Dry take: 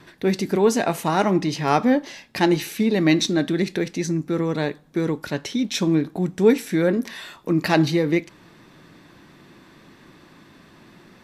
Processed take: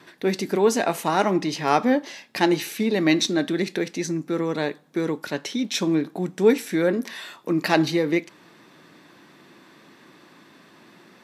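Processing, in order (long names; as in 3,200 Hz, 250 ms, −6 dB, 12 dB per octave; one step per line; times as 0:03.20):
Bessel high-pass filter 240 Hz, order 2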